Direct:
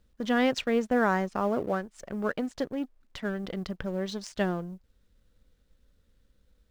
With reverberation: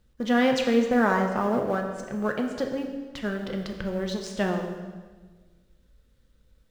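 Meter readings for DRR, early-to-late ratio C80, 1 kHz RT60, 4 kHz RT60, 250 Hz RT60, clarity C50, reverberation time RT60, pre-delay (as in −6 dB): 2.5 dB, 7.5 dB, 1.3 s, 1.2 s, 1.7 s, 6.0 dB, 1.4 s, 3 ms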